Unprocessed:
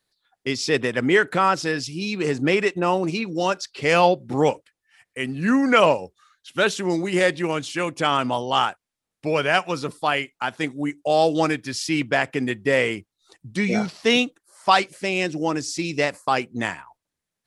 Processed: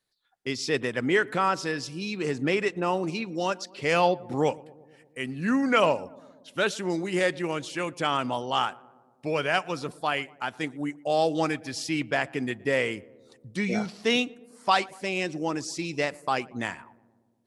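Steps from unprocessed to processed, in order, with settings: darkening echo 0.117 s, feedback 69%, low-pass 1200 Hz, level -21.5 dB; gain -5.5 dB

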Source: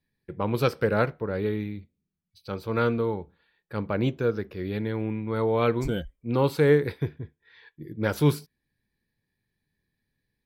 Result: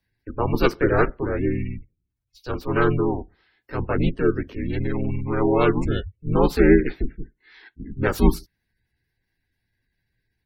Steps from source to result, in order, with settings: harmoniser +3 st -1 dB; frequency shift -120 Hz; spectral gate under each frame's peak -30 dB strong; gain +2.5 dB

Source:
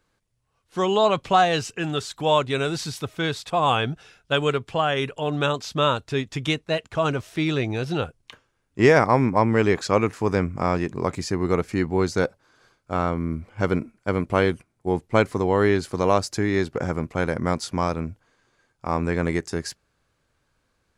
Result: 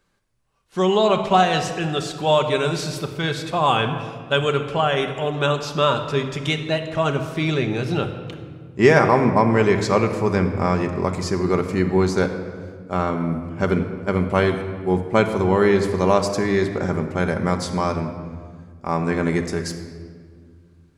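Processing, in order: shoebox room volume 2800 m³, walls mixed, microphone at 1.2 m; gain +1 dB

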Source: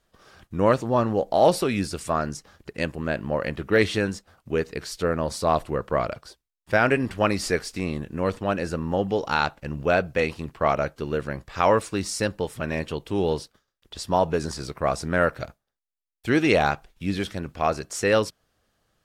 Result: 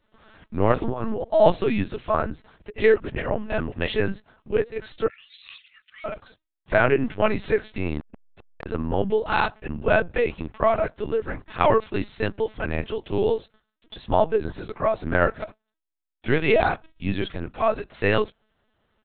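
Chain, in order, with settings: 5.07–6.05 steep high-pass 2200 Hz 36 dB/oct; comb 4.6 ms, depth 58%; 0.73–1.23 negative-ratio compressor -26 dBFS, ratio -1; 2.8–3.87 reverse; LPC vocoder at 8 kHz pitch kept; 8–8.66 core saturation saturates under 2300 Hz

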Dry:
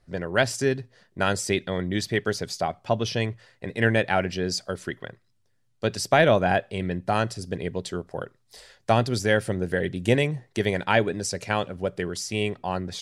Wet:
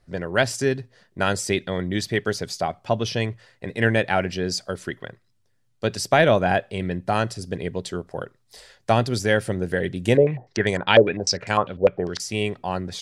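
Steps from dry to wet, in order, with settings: 10.17–12.2 stepped low-pass 10 Hz 510–7700 Hz; gain +1.5 dB

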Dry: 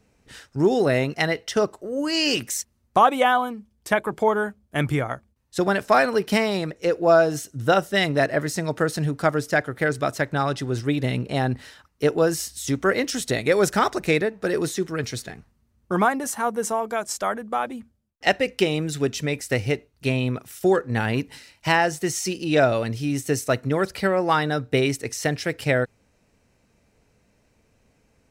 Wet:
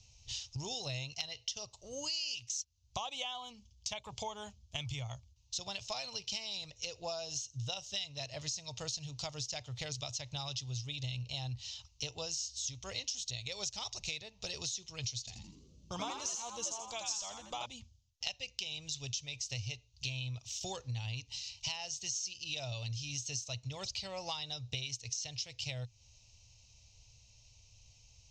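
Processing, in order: EQ curve 120 Hz 0 dB, 160 Hz -18 dB, 240 Hz -23 dB, 350 Hz -29 dB, 550 Hz -18 dB, 950 Hz -12 dB, 1600 Hz -29 dB, 2800 Hz +3 dB, 6600 Hz +10 dB, 10000 Hz -27 dB; compressor 6:1, threshold -42 dBFS, peak gain reduction 24.5 dB; 15.19–17.66 frequency-shifting echo 83 ms, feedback 42%, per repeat +99 Hz, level -4 dB; gain +4 dB

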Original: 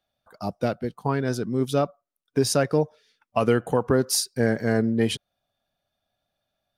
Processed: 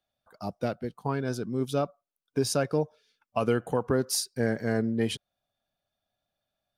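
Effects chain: 1.13–3.57 Butterworth band-stop 1900 Hz, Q 7.9; gain -5 dB

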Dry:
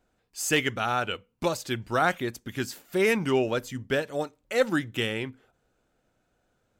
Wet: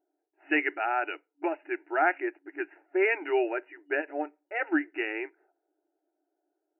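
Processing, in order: low-pass opened by the level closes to 520 Hz, open at -21.5 dBFS; fixed phaser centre 750 Hz, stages 8; FFT band-pass 280–2900 Hz; gain +1.5 dB

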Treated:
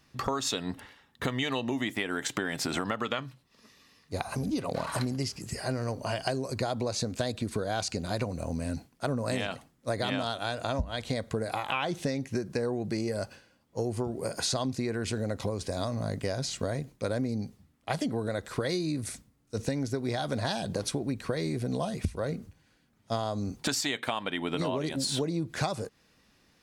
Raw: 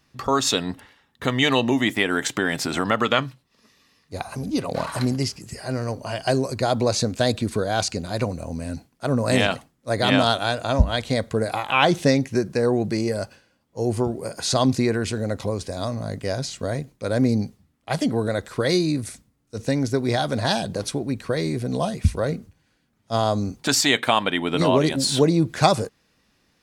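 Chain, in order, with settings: compressor 10:1, threshold -27 dBFS, peak gain reduction 17.5 dB

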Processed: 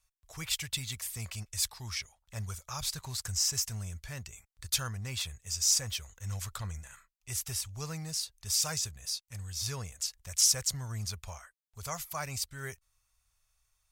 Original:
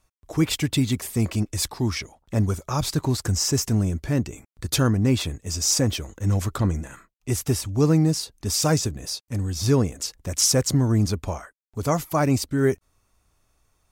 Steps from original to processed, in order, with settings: passive tone stack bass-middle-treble 10-0-10; gain -3.5 dB

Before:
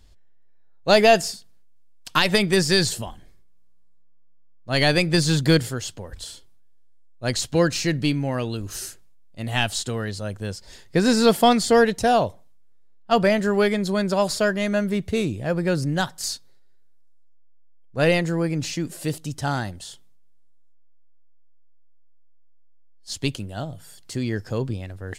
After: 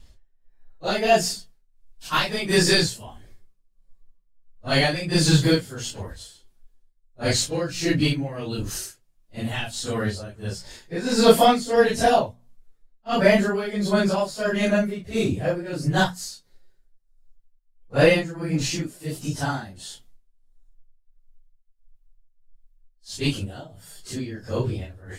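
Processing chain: phase scrambler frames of 0.1 s; notches 60/120/180/240 Hz; tremolo 1.5 Hz, depth 77%; gain +3.5 dB

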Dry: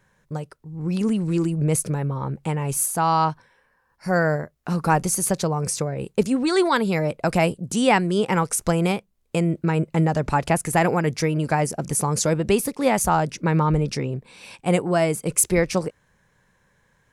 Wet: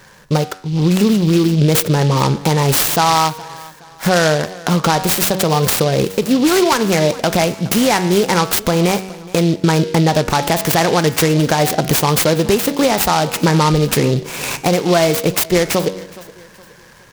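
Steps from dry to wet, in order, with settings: low shelf 180 Hz -8 dB; de-hum 94.39 Hz, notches 32; compressor, threshold -31 dBFS, peak gain reduction 16 dB; feedback echo 0.418 s, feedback 38%, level -21.5 dB; maximiser +23 dB; noise-modulated delay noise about 3600 Hz, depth 0.062 ms; gain -2.5 dB

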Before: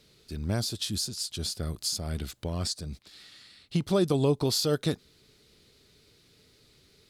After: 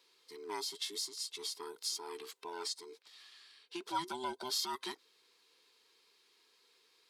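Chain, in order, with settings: band inversion scrambler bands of 500 Hz; HPF 710 Hz 12 dB/oct; high shelf 4900 Hz -4.5 dB; gain -4.5 dB

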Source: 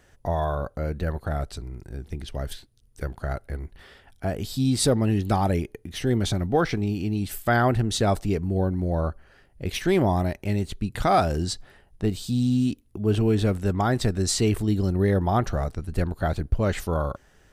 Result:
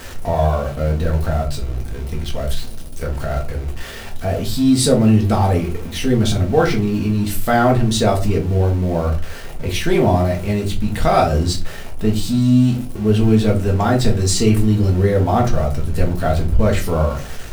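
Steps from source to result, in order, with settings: zero-crossing step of -34 dBFS; shoebox room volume 140 m³, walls furnished, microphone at 1.6 m; gain +2 dB

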